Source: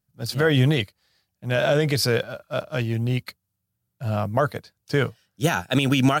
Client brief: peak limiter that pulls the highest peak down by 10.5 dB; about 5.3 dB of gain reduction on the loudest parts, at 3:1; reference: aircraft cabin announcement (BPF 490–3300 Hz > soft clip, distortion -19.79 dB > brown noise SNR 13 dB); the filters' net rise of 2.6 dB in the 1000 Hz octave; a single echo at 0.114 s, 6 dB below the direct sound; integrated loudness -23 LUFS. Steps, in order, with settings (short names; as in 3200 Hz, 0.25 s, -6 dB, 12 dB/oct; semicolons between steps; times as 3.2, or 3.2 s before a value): bell 1000 Hz +4.5 dB; compressor 3:1, threshold -21 dBFS; limiter -19 dBFS; BPF 490–3300 Hz; echo 0.114 s -6 dB; soft clip -23 dBFS; brown noise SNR 13 dB; gain +13 dB